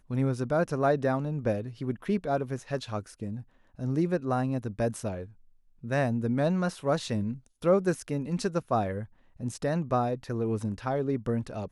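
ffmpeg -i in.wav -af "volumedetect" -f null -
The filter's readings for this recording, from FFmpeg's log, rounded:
mean_volume: -29.5 dB
max_volume: -11.6 dB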